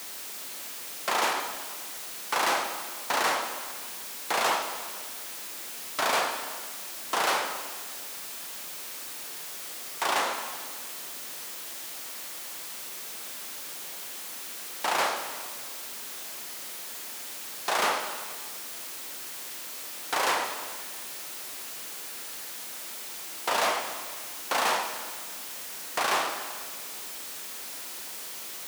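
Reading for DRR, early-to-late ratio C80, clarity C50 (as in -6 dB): 5.0 dB, 7.5 dB, 6.0 dB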